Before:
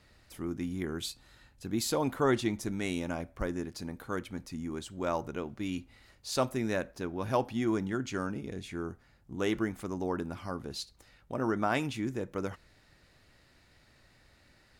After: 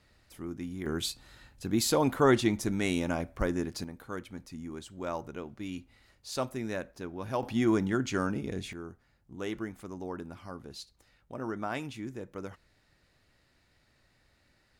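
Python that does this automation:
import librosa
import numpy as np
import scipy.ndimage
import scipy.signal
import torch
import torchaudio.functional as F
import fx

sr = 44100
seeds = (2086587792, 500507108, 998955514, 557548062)

y = fx.gain(x, sr, db=fx.steps((0.0, -3.0), (0.86, 4.0), (3.84, -3.5), (7.43, 4.0), (8.73, -5.5)))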